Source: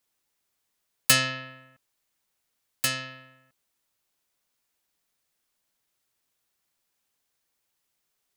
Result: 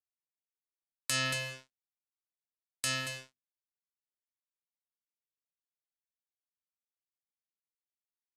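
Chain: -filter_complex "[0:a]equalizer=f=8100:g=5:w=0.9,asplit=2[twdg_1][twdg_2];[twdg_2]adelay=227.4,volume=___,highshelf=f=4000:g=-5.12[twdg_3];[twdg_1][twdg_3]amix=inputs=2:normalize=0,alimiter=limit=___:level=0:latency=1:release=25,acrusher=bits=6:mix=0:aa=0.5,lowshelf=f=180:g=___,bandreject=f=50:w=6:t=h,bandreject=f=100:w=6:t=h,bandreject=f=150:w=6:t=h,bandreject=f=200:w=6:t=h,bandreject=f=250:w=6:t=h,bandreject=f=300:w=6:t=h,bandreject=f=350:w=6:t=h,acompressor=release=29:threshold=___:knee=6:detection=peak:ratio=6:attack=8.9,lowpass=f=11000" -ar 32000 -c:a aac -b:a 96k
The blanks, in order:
0.178, 0.251, 2, 0.0282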